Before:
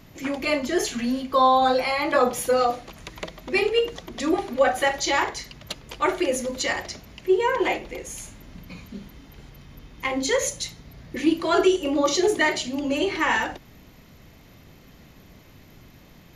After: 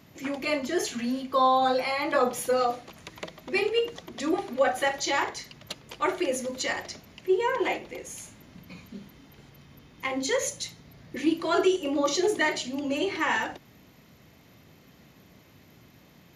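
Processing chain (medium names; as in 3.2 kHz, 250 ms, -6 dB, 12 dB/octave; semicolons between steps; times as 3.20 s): high-pass 94 Hz 12 dB/octave; trim -4 dB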